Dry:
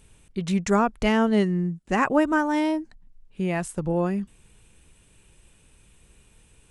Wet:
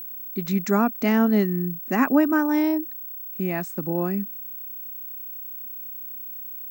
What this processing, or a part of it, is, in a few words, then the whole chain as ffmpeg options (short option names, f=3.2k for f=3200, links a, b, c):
old television with a line whistle: -af "highpass=f=170:w=0.5412,highpass=f=170:w=1.3066,equalizer=f=260:t=q:w=4:g=9,equalizer=f=510:t=q:w=4:g=-5,equalizer=f=940:t=q:w=4:g=-4,equalizer=f=3.1k:t=q:w=4:g=-8,lowpass=f=7.1k:w=0.5412,lowpass=f=7.1k:w=1.3066,aeval=exprs='val(0)+0.0224*sin(2*PI*15734*n/s)':c=same"